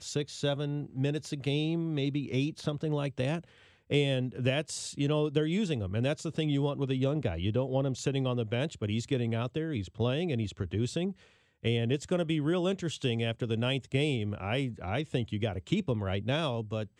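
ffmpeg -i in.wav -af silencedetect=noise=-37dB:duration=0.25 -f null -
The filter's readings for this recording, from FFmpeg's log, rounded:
silence_start: 3.39
silence_end: 3.90 | silence_duration: 0.51
silence_start: 11.12
silence_end: 11.65 | silence_duration: 0.53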